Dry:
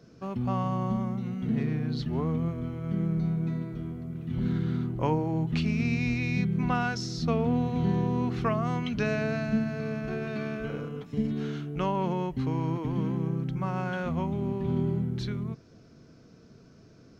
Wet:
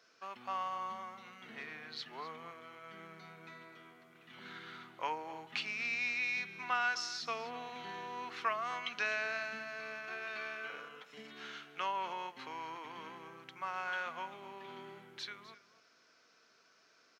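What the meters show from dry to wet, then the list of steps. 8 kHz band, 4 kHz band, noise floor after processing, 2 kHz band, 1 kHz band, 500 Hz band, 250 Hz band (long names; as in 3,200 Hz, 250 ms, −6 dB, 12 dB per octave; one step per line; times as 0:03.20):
can't be measured, −0.5 dB, −68 dBFS, +0.5 dB, −4.0 dB, −14.0 dB, −27.5 dB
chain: high-pass filter 1,400 Hz 12 dB per octave
high-shelf EQ 4,300 Hz −9 dB
single-tap delay 253 ms −15.5 dB
level +3.5 dB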